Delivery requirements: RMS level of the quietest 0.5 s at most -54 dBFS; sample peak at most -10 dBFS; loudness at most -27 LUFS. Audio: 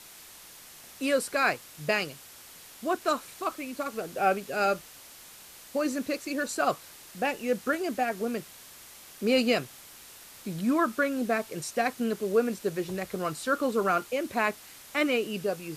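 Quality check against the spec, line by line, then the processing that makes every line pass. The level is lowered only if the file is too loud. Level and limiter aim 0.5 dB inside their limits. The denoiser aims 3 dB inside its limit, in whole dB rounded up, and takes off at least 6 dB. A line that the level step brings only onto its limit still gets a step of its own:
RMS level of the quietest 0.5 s -49 dBFS: fail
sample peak -12.0 dBFS: OK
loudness -29.0 LUFS: OK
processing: denoiser 8 dB, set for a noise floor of -49 dBFS

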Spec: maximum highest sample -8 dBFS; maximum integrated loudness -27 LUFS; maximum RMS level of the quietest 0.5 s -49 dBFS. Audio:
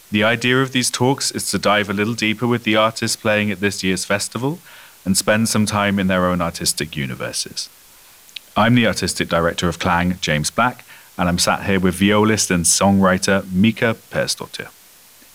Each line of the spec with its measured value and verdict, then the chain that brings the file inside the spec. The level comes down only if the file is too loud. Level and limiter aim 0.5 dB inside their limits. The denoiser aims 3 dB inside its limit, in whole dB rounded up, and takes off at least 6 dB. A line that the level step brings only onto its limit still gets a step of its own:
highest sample -3.0 dBFS: fail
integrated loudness -17.5 LUFS: fail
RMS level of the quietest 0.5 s -47 dBFS: fail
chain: gain -10 dB

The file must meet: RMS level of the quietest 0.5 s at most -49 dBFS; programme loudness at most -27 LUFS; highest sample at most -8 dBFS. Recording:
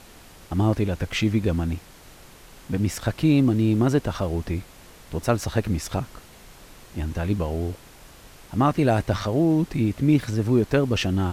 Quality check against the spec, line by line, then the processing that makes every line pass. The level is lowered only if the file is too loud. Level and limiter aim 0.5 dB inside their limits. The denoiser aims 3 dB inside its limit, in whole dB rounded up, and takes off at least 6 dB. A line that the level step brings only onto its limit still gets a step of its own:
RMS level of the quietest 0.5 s -47 dBFS: fail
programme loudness -23.5 LUFS: fail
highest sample -6.0 dBFS: fail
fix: gain -4 dB

